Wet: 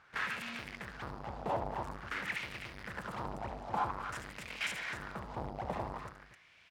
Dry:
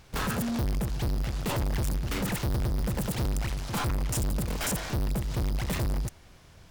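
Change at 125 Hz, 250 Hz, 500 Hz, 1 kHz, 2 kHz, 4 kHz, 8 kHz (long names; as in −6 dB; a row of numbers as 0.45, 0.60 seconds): −18.0, −14.5, −6.0, 0.0, −0.5, −7.5, −17.5 decibels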